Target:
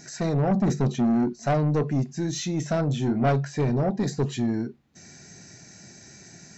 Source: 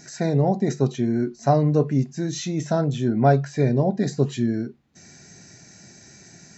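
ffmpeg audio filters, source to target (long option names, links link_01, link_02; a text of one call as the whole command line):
ffmpeg -i in.wav -filter_complex "[0:a]asettb=1/sr,asplit=3[link_01][link_02][link_03];[link_01]atrim=end=0.514[link_04];[link_02]atrim=start=0.51:end=1.33,asetpts=PTS-STARTPTS,afade=type=in:duration=0.004:curve=qsin,afade=type=out:start_time=0.816:duration=0.004:curve=qsin,equalizer=frequency=190:width=1.3:gain=10[link_05];[link_03]atrim=start=1.326[link_06];[link_04][link_05]acrossfade=duration=0.004:curve1=hsin:curve2=qsin[link_07];[link_07][link_06]acrossfade=duration=0.004:curve1=qsin:curve2=hsin,asoftclip=type=tanh:threshold=-18dB,asettb=1/sr,asplit=3[link_08][link_09][link_10];[link_08]atrim=end=2.874[link_11];[link_09]atrim=start=2.87:end=3.29,asetpts=PTS-STARTPTS,afade=type=in:duration=0.004:curve=qsin,afade=type=out:start_time=0.416:duration=0.004:curve=qsin,asplit=2[link_12][link_13];[link_13]adelay=30,volume=-8dB[link_14];[link_12][link_14]amix=inputs=2:normalize=0,atrim=end_sample=18522[link_15];[link_10]atrim=start=3.286[link_16];[link_11][link_15]acrossfade=duration=0.004:curve1=hsin:curve2=qsin[link_17];[link_17][link_16]acrossfade=duration=0.004:curve1=qsin:curve2=hsin" out.wav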